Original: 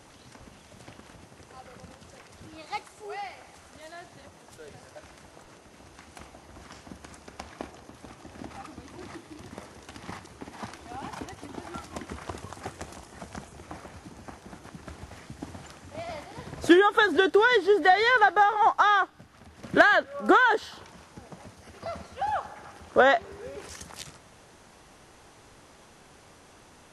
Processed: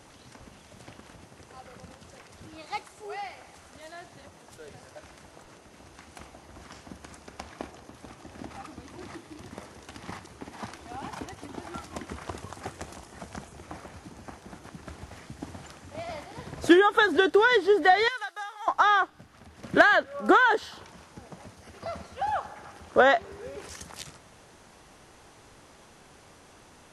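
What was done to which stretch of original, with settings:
18.08–18.68 s: differentiator

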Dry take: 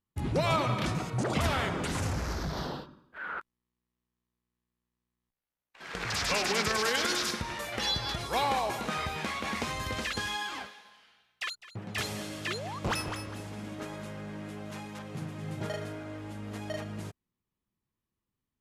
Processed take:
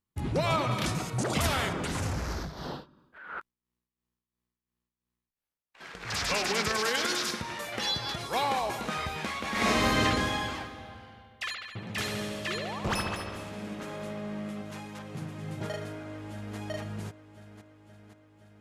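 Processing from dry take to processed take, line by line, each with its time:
0.71–1.73 s: treble shelf 4.9 kHz +10 dB
2.37–6.12 s: tremolo 2.9 Hz, depth 63%
6.72–8.61 s: high-pass 100 Hz
9.50–10.00 s: reverb throw, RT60 2.2 s, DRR -9.5 dB
10.71–14.62 s: bucket-brigade echo 72 ms, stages 2048, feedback 68%, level -5 dB
15.80–16.57 s: echo throw 520 ms, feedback 70%, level -9 dB

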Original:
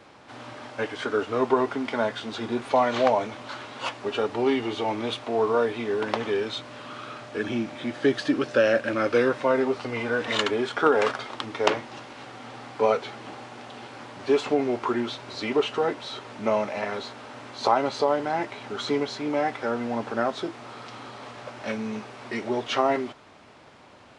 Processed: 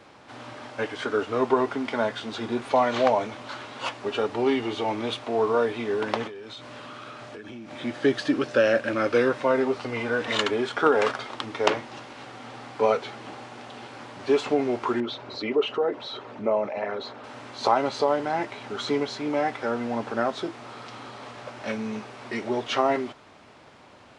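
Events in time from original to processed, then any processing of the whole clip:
6.27–7.71 s: compression 20:1, threshold -36 dBFS
15.00–17.24 s: resonances exaggerated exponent 1.5

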